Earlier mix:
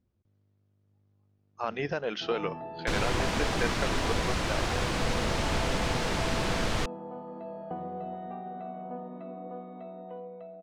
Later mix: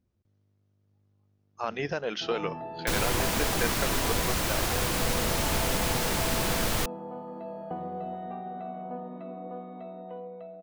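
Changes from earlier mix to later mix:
first sound: send +8.0 dB; master: remove air absorption 88 m

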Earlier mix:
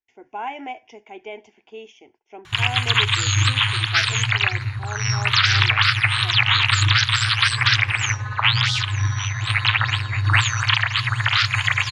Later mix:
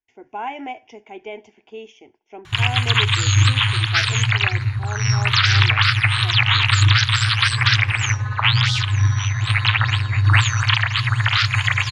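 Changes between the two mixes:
speech: send on; master: add low shelf 290 Hz +5.5 dB

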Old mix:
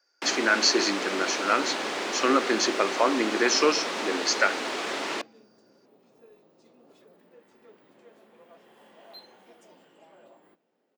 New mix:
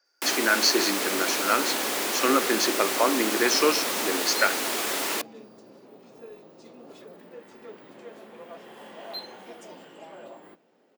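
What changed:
first sound: remove air absorption 120 m; second sound +10.5 dB

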